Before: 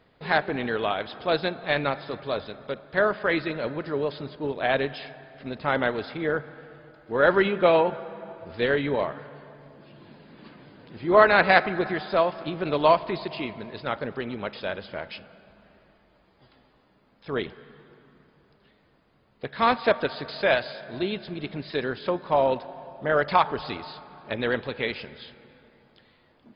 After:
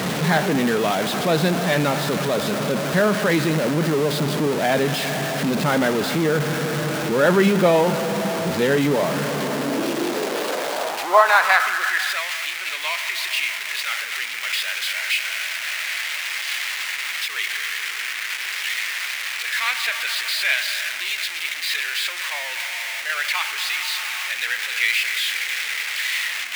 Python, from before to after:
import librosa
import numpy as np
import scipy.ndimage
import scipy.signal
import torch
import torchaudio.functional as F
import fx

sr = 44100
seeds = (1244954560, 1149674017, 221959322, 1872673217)

y = x + 0.5 * 10.0 ** (-19.0 / 20.0) * np.sign(x)
y = fx.filter_sweep_highpass(y, sr, from_hz=170.0, to_hz=2100.0, start_s=9.19, end_s=12.28, q=2.7)
y = fx.end_taper(y, sr, db_per_s=150.0)
y = y * 10.0 ** (-1.0 / 20.0)